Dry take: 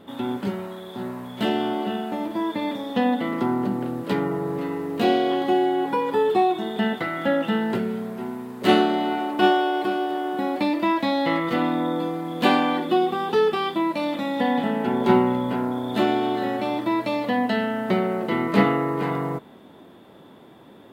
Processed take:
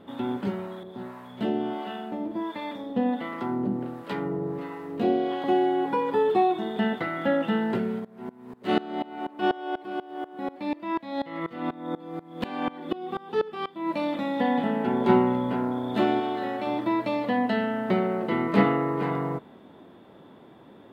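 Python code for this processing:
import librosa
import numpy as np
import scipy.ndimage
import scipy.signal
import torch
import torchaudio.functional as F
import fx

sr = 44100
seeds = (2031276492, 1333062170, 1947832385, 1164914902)

y = fx.harmonic_tremolo(x, sr, hz=1.4, depth_pct=70, crossover_hz=650.0, at=(0.83, 5.44))
y = fx.tremolo_decay(y, sr, direction='swelling', hz=4.1, depth_db=22, at=(7.99, 13.88), fade=0.02)
y = fx.low_shelf(y, sr, hz=350.0, db=-7.0, at=(16.2, 16.67))
y = fx.high_shelf(y, sr, hz=4600.0, db=-10.0)
y = y * 10.0 ** (-2.0 / 20.0)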